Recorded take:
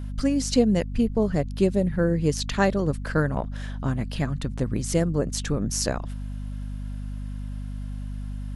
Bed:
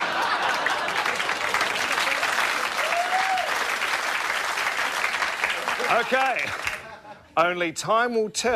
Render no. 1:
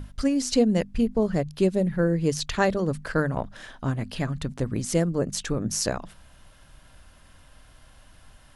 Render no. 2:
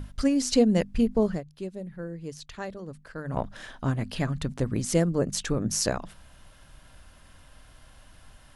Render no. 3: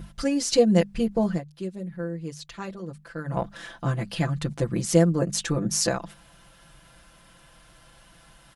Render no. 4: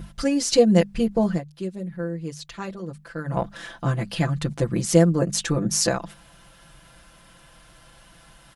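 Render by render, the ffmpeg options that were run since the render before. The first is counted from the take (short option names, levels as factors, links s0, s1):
-af "bandreject=f=50:t=h:w=6,bandreject=f=100:t=h:w=6,bandreject=f=150:t=h:w=6,bandreject=f=200:t=h:w=6,bandreject=f=250:t=h:w=6"
-filter_complex "[0:a]asplit=3[s0][s1][s2];[s0]atrim=end=1.41,asetpts=PTS-STARTPTS,afade=t=out:st=1.28:d=0.13:silence=0.199526[s3];[s1]atrim=start=1.41:end=3.24,asetpts=PTS-STARTPTS,volume=0.2[s4];[s2]atrim=start=3.24,asetpts=PTS-STARTPTS,afade=t=in:d=0.13:silence=0.199526[s5];[s3][s4][s5]concat=n=3:v=0:a=1"
-af "highpass=f=77:p=1,aecho=1:1:5.9:0.9"
-af "volume=1.33"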